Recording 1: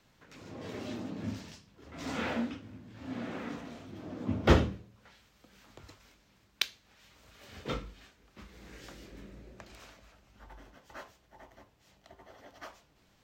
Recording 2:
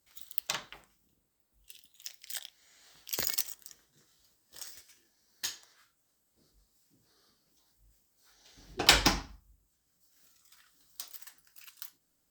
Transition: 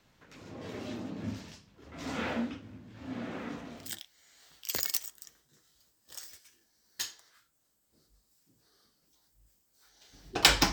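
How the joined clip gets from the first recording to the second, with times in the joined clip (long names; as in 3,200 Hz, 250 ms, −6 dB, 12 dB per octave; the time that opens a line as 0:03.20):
recording 1
0:03.86: continue with recording 2 from 0:02.30, crossfade 0.30 s equal-power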